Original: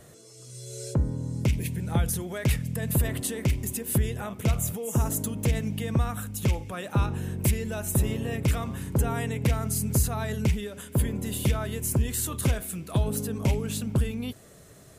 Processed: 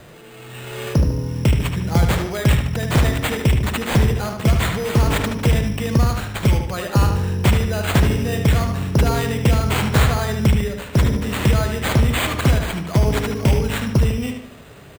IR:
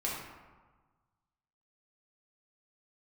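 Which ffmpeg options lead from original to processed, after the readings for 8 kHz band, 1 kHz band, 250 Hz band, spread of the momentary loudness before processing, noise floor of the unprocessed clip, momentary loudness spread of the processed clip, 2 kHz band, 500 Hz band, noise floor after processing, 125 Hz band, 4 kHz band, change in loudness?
+0.5 dB, +11.5 dB, +8.5 dB, 4 LU, -51 dBFS, 3 LU, +13.0 dB, +10.0 dB, -41 dBFS, +9.0 dB, +12.5 dB, +9.0 dB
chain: -filter_complex "[0:a]acrusher=samples=8:mix=1:aa=0.000001,asplit=2[a][b];[b]adelay=75,lowpass=f=5k:p=1,volume=-5.5dB,asplit=2[c][d];[d]adelay=75,lowpass=f=5k:p=1,volume=0.45,asplit=2[e][f];[f]adelay=75,lowpass=f=5k:p=1,volume=0.45,asplit=2[g][h];[h]adelay=75,lowpass=f=5k:p=1,volume=0.45,asplit=2[i][j];[j]adelay=75,lowpass=f=5k:p=1,volume=0.45[k];[a][c][e][g][i][k]amix=inputs=6:normalize=0,volume=8dB"

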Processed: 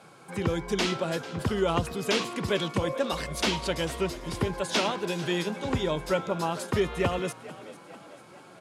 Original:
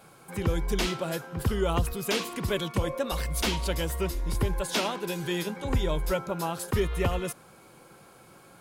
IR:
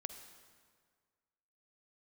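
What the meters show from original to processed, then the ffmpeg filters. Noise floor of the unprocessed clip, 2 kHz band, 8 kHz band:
-54 dBFS, +2.0 dB, -1.5 dB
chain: -filter_complex "[0:a]highpass=120,lowpass=7.5k,asplit=2[a][b];[b]asplit=5[c][d][e][f][g];[c]adelay=445,afreqshift=60,volume=-17dB[h];[d]adelay=890,afreqshift=120,volume=-22.5dB[i];[e]adelay=1335,afreqshift=180,volume=-28dB[j];[f]adelay=1780,afreqshift=240,volume=-33.5dB[k];[g]adelay=2225,afreqshift=300,volume=-39.1dB[l];[h][i][j][k][l]amix=inputs=5:normalize=0[m];[a][m]amix=inputs=2:normalize=0,volume=2dB"

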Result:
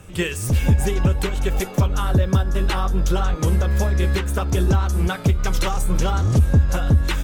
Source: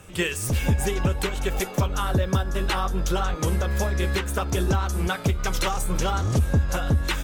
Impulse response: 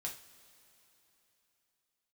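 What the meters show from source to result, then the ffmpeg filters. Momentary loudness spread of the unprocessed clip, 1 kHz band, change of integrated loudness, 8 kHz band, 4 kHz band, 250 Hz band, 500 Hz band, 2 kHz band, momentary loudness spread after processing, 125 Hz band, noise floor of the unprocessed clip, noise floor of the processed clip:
3 LU, +0.5 dB, +4.5 dB, 0.0 dB, 0.0 dB, +4.0 dB, +2.0 dB, 0.0 dB, 4 LU, +6.0 dB, -35 dBFS, -32 dBFS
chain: -af "lowshelf=f=300:g=6.5"

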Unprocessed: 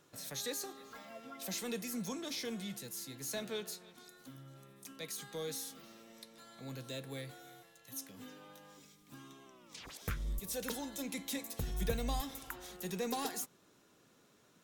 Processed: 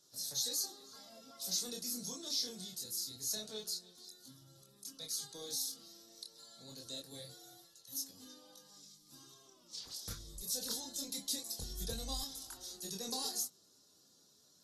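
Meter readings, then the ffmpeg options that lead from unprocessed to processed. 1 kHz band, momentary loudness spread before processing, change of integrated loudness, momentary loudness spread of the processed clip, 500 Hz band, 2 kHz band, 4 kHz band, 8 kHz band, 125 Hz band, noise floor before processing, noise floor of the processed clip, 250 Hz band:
-8.0 dB, 17 LU, +1.5 dB, 20 LU, -8.0 dB, -12.5 dB, +5.5 dB, +5.0 dB, -8.5 dB, -67 dBFS, -67 dBFS, -7.5 dB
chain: -filter_complex "[0:a]highshelf=f=3.3k:t=q:w=3:g=12,flanger=delay=22.5:depth=6.7:speed=0.25,acrossover=split=690[a][b];[b]aexciter=amount=1.9:drive=5.4:freq=12k[c];[a][c]amix=inputs=2:normalize=0,volume=-7dB" -ar 44100 -c:a aac -b:a 32k

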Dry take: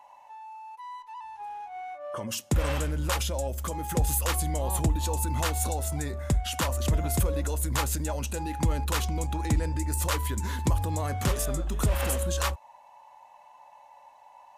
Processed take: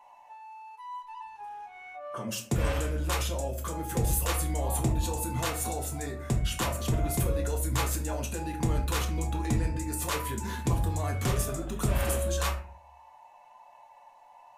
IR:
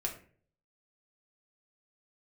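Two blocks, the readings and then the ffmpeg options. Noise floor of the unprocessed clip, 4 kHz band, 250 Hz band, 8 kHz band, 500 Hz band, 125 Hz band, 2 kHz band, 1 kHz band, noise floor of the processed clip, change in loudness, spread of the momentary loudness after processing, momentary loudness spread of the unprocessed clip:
-54 dBFS, -2.0 dB, -0.5 dB, -2.0 dB, -0.5 dB, -1.5 dB, -1.0 dB, -2.0 dB, -55 dBFS, -1.5 dB, 14 LU, 13 LU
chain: -filter_complex "[1:a]atrim=start_sample=2205[a];[0:a][a]afir=irnorm=-1:irlink=0,volume=-3dB"

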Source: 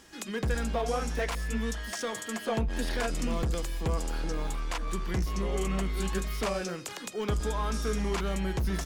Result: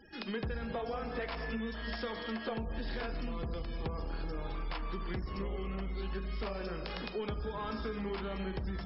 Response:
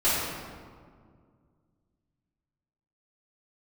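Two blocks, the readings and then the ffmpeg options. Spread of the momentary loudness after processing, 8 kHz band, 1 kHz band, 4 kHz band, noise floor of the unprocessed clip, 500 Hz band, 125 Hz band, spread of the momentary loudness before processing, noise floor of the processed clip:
2 LU, under -40 dB, -6.0 dB, -6.0 dB, -42 dBFS, -6.0 dB, -8.0 dB, 4 LU, -42 dBFS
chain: -filter_complex "[0:a]asplit=2[a][b];[1:a]atrim=start_sample=2205[c];[b][c]afir=irnorm=-1:irlink=0,volume=-21.5dB[d];[a][d]amix=inputs=2:normalize=0,acompressor=threshold=-33dB:ratio=12,afftfilt=real='re*gte(hypot(re,im),0.00316)':imag='im*gte(hypot(re,im),0.00316)':win_size=1024:overlap=0.75" -ar 12000 -c:a libmp3lame -b:a 48k

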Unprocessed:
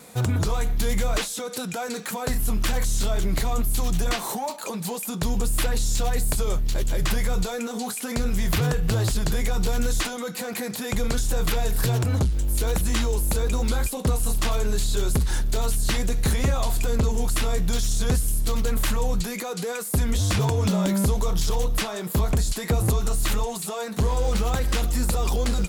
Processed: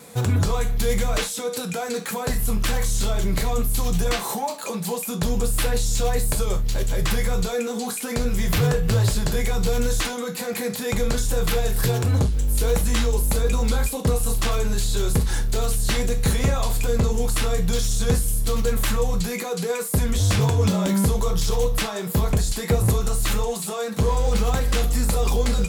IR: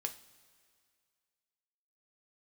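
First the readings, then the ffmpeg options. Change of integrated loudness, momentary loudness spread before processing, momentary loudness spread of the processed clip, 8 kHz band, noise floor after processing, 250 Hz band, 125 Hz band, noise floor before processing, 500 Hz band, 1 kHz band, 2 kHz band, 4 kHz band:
+2.0 dB, 6 LU, 6 LU, +2.0 dB, -30 dBFS, +2.0 dB, +2.5 dB, -32 dBFS, +4.0 dB, +1.5 dB, +2.0 dB, +2.0 dB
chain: -filter_complex "[1:a]atrim=start_sample=2205,atrim=end_sample=3528[a];[0:a][a]afir=irnorm=-1:irlink=0,volume=2.5dB"

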